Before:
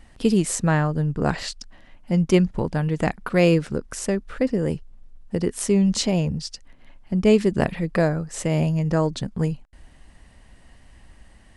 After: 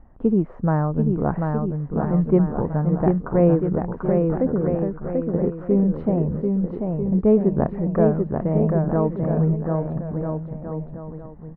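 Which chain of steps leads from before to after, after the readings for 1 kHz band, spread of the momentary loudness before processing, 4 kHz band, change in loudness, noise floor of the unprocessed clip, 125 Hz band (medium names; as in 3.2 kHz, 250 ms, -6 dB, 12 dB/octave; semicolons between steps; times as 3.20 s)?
+1.5 dB, 11 LU, under -30 dB, +1.0 dB, -52 dBFS, +2.0 dB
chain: low-pass 1.2 kHz 24 dB/octave; on a send: bouncing-ball echo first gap 740 ms, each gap 0.75×, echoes 5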